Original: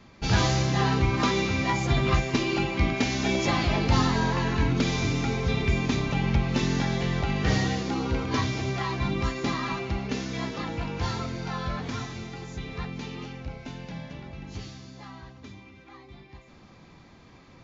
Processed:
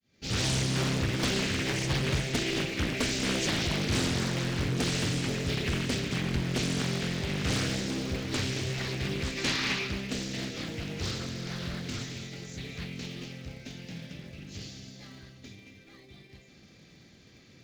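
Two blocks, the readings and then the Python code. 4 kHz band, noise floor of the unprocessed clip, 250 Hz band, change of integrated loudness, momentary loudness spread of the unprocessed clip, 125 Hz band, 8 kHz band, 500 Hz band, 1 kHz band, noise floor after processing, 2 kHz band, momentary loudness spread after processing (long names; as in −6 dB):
+1.0 dB, −52 dBFS, −4.5 dB, −3.5 dB, 16 LU, −5.0 dB, can't be measured, −4.5 dB, −10.5 dB, −56 dBFS, −2.5 dB, 15 LU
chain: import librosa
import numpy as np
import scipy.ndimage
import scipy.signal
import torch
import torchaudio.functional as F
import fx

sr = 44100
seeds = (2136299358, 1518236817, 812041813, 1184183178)

p1 = fx.fade_in_head(x, sr, length_s=0.51)
p2 = scipy.signal.sosfilt(scipy.signal.butter(2, 74.0, 'highpass', fs=sr, output='sos'), p1)
p3 = fx.high_shelf(p2, sr, hz=2200.0, db=11.5)
p4 = fx.sample_hold(p3, sr, seeds[0], rate_hz=1400.0, jitter_pct=0)
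p5 = p3 + F.gain(torch.from_numpy(p4), -7.0).numpy()
p6 = fx.peak_eq(p5, sr, hz=980.0, db=-13.5, octaves=0.75)
p7 = fx.spec_box(p6, sr, start_s=9.38, length_s=0.49, low_hz=750.0, high_hz=6200.0, gain_db=7)
p8 = p7 + 10.0 ** (-11.5 / 20.0) * np.pad(p7, (int(223 * sr / 1000.0), 0))[:len(p7)]
p9 = 10.0 ** (-11.5 / 20.0) * np.tanh(p8 / 10.0 ** (-11.5 / 20.0))
p10 = fx.doppler_dist(p9, sr, depth_ms=0.98)
y = F.gain(torch.from_numpy(p10), -6.5).numpy()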